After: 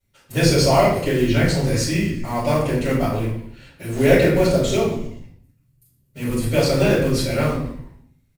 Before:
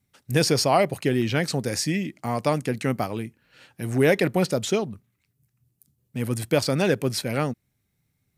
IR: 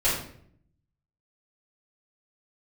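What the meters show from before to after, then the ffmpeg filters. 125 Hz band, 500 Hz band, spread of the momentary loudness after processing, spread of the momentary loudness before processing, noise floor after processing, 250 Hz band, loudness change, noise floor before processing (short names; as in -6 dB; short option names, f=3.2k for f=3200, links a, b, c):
+6.5 dB, +5.5 dB, 15 LU, 11 LU, -62 dBFS, +5.0 dB, +5.0 dB, -75 dBFS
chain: -filter_complex "[0:a]acrusher=bits=5:mode=log:mix=0:aa=0.000001,asplit=5[a][b][c][d][e];[b]adelay=120,afreqshift=-99,volume=-16dB[f];[c]adelay=240,afreqshift=-198,volume=-22dB[g];[d]adelay=360,afreqshift=-297,volume=-28dB[h];[e]adelay=480,afreqshift=-396,volume=-34.1dB[i];[a][f][g][h][i]amix=inputs=5:normalize=0[j];[1:a]atrim=start_sample=2205,afade=t=out:st=0.44:d=0.01,atrim=end_sample=19845[k];[j][k]afir=irnorm=-1:irlink=0,volume=-9dB"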